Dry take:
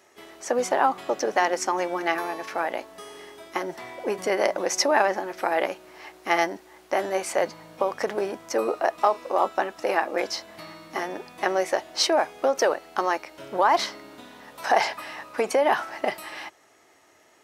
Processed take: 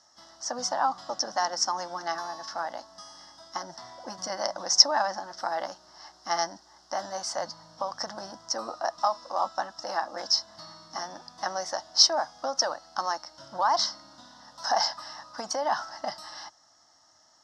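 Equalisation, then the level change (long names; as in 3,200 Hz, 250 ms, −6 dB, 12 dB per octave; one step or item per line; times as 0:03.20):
low-pass with resonance 5,300 Hz, resonance Q 6.8
phaser with its sweep stopped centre 1,000 Hz, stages 4
−3.5 dB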